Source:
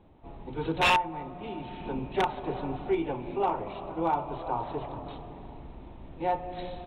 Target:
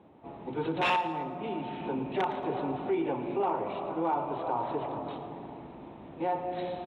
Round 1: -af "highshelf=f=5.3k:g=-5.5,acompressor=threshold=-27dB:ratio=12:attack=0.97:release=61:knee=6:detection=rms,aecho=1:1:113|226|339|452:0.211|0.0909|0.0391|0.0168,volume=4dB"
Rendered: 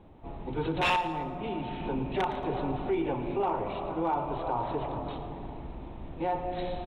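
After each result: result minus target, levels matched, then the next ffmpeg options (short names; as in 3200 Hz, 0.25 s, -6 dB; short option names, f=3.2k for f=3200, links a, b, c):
8000 Hz band +5.5 dB; 125 Hz band +5.0 dB
-af "highshelf=f=5.3k:g=-15,acompressor=threshold=-27dB:ratio=12:attack=0.97:release=61:knee=6:detection=rms,aecho=1:1:113|226|339|452:0.211|0.0909|0.0391|0.0168,volume=4dB"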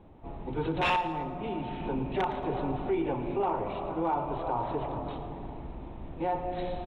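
125 Hz band +5.0 dB
-af "highshelf=f=5.3k:g=-15,acompressor=threshold=-27dB:ratio=12:attack=0.97:release=61:knee=6:detection=rms,highpass=170,aecho=1:1:113|226|339|452:0.211|0.0909|0.0391|0.0168,volume=4dB"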